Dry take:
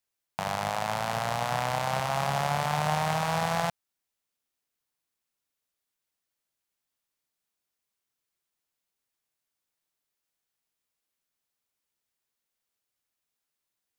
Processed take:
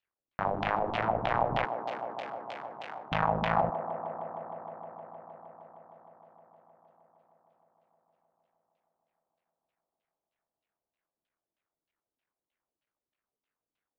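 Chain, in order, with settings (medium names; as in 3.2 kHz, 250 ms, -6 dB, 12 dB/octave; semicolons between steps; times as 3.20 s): cycle switcher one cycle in 3, muted; 1.65–3.12 s: differentiator; LFO low-pass saw down 3.2 Hz 240–3400 Hz; distance through air 66 m; on a send: feedback echo behind a band-pass 155 ms, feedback 85%, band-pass 480 Hz, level -8 dB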